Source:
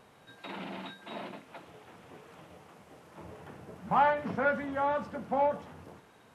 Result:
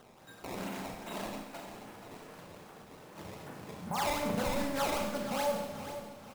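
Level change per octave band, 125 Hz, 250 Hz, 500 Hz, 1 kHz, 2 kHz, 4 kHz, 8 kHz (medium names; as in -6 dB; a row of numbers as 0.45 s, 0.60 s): +1.5 dB, +1.5 dB, -2.5 dB, -6.5 dB, -4.5 dB, +7.5 dB, no reading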